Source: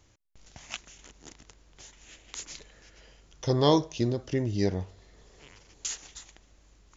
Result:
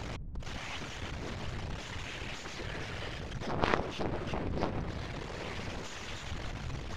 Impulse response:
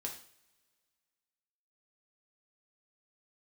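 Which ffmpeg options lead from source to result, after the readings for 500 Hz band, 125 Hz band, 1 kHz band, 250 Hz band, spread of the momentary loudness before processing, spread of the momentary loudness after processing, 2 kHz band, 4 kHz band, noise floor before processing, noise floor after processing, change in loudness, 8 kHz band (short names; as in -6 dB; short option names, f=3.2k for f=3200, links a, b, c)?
-8.0 dB, -5.5 dB, -1.5 dB, -8.0 dB, 22 LU, 8 LU, +7.0 dB, -3.5 dB, -62 dBFS, -43 dBFS, -8.5 dB, n/a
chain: -filter_complex "[0:a]aeval=exprs='val(0)+0.5*0.0708*sgn(val(0))':c=same,afftfilt=real='hypot(re,im)*cos(2*PI*random(0))':imag='hypot(re,im)*sin(2*PI*random(1))':win_size=512:overlap=0.75,asplit=2[a][b];[b]alimiter=limit=-23dB:level=0:latency=1:release=212,volume=0dB[c];[a][c]amix=inputs=2:normalize=0,aeval=exprs='0.316*(cos(1*acos(clip(val(0)/0.316,-1,1)))-cos(1*PI/2))+0.141*(cos(3*acos(clip(val(0)/0.316,-1,1)))-cos(3*PI/2))+0.0251*(cos(4*acos(clip(val(0)/0.316,-1,1)))-cos(4*PI/2))':c=same,lowpass=3.1k,volume=2dB"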